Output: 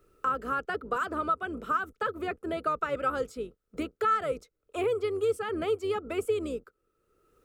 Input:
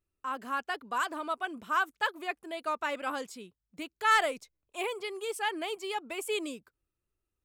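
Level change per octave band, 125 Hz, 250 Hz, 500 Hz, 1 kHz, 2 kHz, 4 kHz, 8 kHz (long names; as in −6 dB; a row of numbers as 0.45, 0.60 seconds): can't be measured, +5.0 dB, +7.0 dB, +1.0 dB, −4.5 dB, −7.5 dB, −7.5 dB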